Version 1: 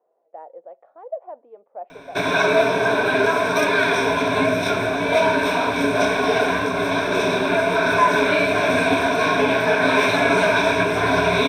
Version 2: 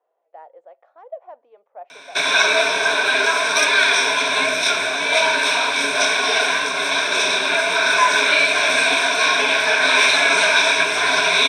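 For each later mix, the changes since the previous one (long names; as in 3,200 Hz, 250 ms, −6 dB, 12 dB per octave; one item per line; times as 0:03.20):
master: add meter weighting curve ITU-R 468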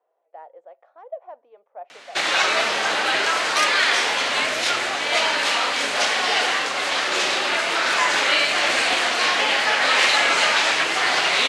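background: remove EQ curve with evenly spaced ripples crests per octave 1.6, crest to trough 16 dB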